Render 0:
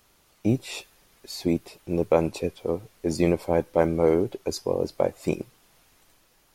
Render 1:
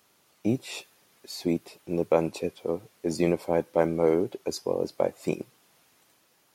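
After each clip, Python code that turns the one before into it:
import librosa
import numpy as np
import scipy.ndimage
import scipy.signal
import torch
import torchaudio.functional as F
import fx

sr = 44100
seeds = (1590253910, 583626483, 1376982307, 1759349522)

y = scipy.signal.sosfilt(scipy.signal.butter(2, 140.0, 'highpass', fs=sr, output='sos'), x)
y = y * 10.0 ** (-2.0 / 20.0)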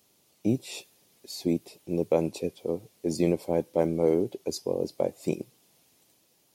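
y = fx.peak_eq(x, sr, hz=1400.0, db=-12.0, octaves=1.5)
y = y * 10.0 ** (1.0 / 20.0)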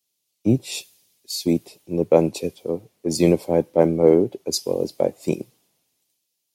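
y = fx.band_widen(x, sr, depth_pct=70)
y = y * 10.0 ** (6.5 / 20.0)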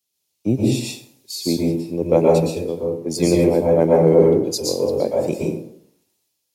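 y = fx.rev_plate(x, sr, seeds[0], rt60_s=0.65, hf_ratio=0.55, predelay_ms=105, drr_db=-3.0)
y = y * 10.0 ** (-1.5 / 20.0)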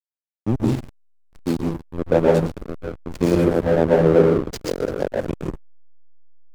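y = fx.backlash(x, sr, play_db=-13.5)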